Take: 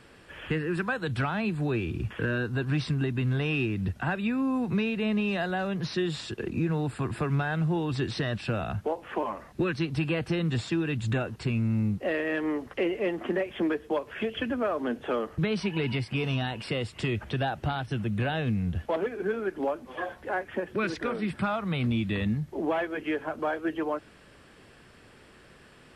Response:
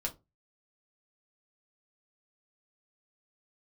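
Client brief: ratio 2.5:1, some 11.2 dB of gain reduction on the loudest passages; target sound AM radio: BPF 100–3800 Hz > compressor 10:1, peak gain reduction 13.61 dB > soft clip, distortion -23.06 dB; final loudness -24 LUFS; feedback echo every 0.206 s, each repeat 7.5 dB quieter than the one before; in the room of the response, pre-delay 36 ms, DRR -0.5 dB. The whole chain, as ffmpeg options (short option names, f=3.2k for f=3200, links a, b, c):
-filter_complex "[0:a]acompressor=threshold=-41dB:ratio=2.5,aecho=1:1:206|412|618|824|1030:0.422|0.177|0.0744|0.0312|0.0131,asplit=2[a][b];[1:a]atrim=start_sample=2205,adelay=36[c];[b][c]afir=irnorm=-1:irlink=0,volume=-1dB[d];[a][d]amix=inputs=2:normalize=0,highpass=100,lowpass=3.8k,acompressor=threshold=-40dB:ratio=10,asoftclip=threshold=-34.5dB,volume=21dB"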